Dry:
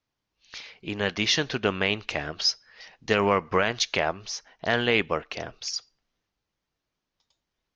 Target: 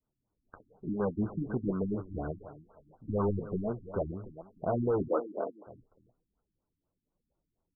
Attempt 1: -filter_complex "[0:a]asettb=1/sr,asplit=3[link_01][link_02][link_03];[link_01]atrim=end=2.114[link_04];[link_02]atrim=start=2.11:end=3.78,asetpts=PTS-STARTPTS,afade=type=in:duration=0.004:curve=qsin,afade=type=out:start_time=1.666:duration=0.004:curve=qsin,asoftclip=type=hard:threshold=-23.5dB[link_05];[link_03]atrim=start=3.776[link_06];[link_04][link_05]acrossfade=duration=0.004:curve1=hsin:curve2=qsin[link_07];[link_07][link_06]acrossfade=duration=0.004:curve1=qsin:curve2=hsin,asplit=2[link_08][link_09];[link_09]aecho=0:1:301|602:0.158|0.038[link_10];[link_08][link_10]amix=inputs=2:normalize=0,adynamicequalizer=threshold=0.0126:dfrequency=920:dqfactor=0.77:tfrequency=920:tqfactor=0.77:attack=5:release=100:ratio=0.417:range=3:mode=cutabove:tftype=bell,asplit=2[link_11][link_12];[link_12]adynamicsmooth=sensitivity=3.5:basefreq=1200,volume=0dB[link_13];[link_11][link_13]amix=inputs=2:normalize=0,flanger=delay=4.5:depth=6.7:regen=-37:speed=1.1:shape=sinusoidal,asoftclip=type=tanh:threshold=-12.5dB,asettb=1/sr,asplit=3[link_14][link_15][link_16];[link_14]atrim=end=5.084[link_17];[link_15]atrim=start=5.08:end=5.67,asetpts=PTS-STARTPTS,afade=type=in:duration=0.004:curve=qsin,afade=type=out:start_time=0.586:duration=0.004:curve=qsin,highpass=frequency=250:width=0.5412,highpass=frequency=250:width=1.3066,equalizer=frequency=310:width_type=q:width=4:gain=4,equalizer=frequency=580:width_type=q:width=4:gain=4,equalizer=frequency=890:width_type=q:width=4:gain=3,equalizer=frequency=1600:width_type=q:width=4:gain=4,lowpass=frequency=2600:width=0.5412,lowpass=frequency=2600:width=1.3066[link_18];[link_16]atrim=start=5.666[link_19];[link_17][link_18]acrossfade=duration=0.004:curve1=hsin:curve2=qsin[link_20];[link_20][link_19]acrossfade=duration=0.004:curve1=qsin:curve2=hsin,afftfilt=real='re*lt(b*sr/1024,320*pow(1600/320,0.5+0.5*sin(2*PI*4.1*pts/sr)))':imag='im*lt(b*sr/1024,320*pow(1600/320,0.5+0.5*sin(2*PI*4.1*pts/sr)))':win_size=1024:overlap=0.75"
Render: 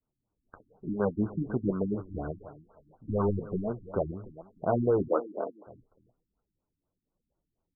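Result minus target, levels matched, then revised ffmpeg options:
soft clipping: distortion −11 dB
-filter_complex "[0:a]asettb=1/sr,asplit=3[link_01][link_02][link_03];[link_01]atrim=end=2.114[link_04];[link_02]atrim=start=2.11:end=3.78,asetpts=PTS-STARTPTS,afade=type=in:duration=0.004:curve=qsin,afade=type=out:start_time=1.666:duration=0.004:curve=qsin,asoftclip=type=hard:threshold=-23.5dB[link_05];[link_03]atrim=start=3.776[link_06];[link_04][link_05]acrossfade=duration=0.004:curve1=hsin:curve2=qsin[link_07];[link_07][link_06]acrossfade=duration=0.004:curve1=qsin:curve2=hsin,asplit=2[link_08][link_09];[link_09]aecho=0:1:301|602:0.158|0.038[link_10];[link_08][link_10]amix=inputs=2:normalize=0,adynamicequalizer=threshold=0.0126:dfrequency=920:dqfactor=0.77:tfrequency=920:tqfactor=0.77:attack=5:release=100:ratio=0.417:range=3:mode=cutabove:tftype=bell,asplit=2[link_11][link_12];[link_12]adynamicsmooth=sensitivity=3.5:basefreq=1200,volume=0dB[link_13];[link_11][link_13]amix=inputs=2:normalize=0,flanger=delay=4.5:depth=6.7:regen=-37:speed=1.1:shape=sinusoidal,asoftclip=type=tanh:threshold=-22.5dB,asettb=1/sr,asplit=3[link_14][link_15][link_16];[link_14]atrim=end=5.084[link_17];[link_15]atrim=start=5.08:end=5.67,asetpts=PTS-STARTPTS,afade=type=in:duration=0.004:curve=qsin,afade=type=out:start_time=0.586:duration=0.004:curve=qsin,highpass=frequency=250:width=0.5412,highpass=frequency=250:width=1.3066,equalizer=frequency=310:width_type=q:width=4:gain=4,equalizer=frequency=580:width_type=q:width=4:gain=4,equalizer=frequency=890:width_type=q:width=4:gain=3,equalizer=frequency=1600:width_type=q:width=4:gain=4,lowpass=frequency=2600:width=0.5412,lowpass=frequency=2600:width=1.3066[link_18];[link_16]atrim=start=5.666[link_19];[link_17][link_18]acrossfade=duration=0.004:curve1=hsin:curve2=qsin[link_20];[link_20][link_19]acrossfade=duration=0.004:curve1=qsin:curve2=hsin,afftfilt=real='re*lt(b*sr/1024,320*pow(1600/320,0.5+0.5*sin(2*PI*4.1*pts/sr)))':imag='im*lt(b*sr/1024,320*pow(1600/320,0.5+0.5*sin(2*PI*4.1*pts/sr)))':win_size=1024:overlap=0.75"

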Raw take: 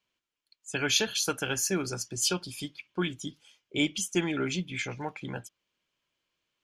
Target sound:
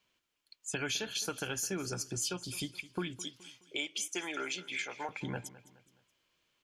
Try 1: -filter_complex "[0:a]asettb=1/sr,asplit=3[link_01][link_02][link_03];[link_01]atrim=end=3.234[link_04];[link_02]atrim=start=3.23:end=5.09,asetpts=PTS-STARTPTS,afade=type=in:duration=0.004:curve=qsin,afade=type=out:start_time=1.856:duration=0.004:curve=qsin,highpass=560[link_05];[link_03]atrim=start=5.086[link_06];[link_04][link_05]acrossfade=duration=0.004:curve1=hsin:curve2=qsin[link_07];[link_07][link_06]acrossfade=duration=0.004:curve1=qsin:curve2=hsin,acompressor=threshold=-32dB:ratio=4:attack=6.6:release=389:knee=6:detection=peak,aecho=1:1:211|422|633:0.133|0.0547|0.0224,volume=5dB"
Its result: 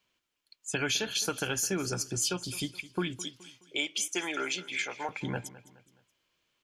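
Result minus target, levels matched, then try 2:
downward compressor: peak gain reduction −5.5 dB
-filter_complex "[0:a]asettb=1/sr,asplit=3[link_01][link_02][link_03];[link_01]atrim=end=3.234[link_04];[link_02]atrim=start=3.23:end=5.09,asetpts=PTS-STARTPTS,afade=type=in:duration=0.004:curve=qsin,afade=type=out:start_time=1.856:duration=0.004:curve=qsin,highpass=560[link_05];[link_03]atrim=start=5.086[link_06];[link_04][link_05]acrossfade=duration=0.004:curve1=hsin:curve2=qsin[link_07];[link_07][link_06]acrossfade=duration=0.004:curve1=qsin:curve2=hsin,acompressor=threshold=-39dB:ratio=4:attack=6.6:release=389:knee=6:detection=peak,aecho=1:1:211|422|633:0.133|0.0547|0.0224,volume=5dB"

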